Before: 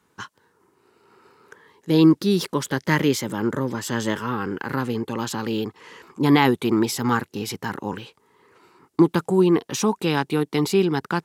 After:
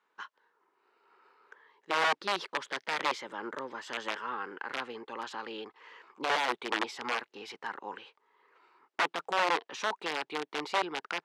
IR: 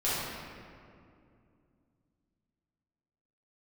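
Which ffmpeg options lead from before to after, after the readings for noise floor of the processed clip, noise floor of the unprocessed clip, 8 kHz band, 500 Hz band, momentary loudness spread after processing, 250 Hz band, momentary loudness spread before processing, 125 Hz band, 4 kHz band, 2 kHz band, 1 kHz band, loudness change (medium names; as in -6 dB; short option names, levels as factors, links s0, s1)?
-80 dBFS, -67 dBFS, -15.0 dB, -14.0 dB, 15 LU, -25.0 dB, 13 LU, -33.5 dB, -5.5 dB, -4.0 dB, -4.5 dB, -11.5 dB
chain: -af "aeval=exprs='(mod(4.22*val(0)+1,2)-1)/4.22':c=same,highpass=620,lowpass=3200,volume=0.473"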